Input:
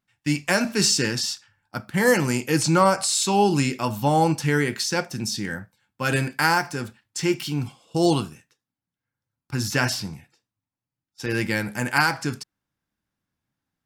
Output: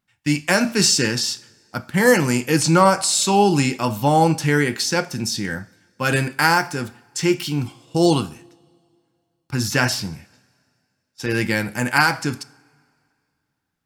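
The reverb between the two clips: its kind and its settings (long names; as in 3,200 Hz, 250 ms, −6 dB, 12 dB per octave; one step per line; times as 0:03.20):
coupled-rooms reverb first 0.53 s, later 2.3 s, from −18 dB, DRR 15.5 dB
level +3.5 dB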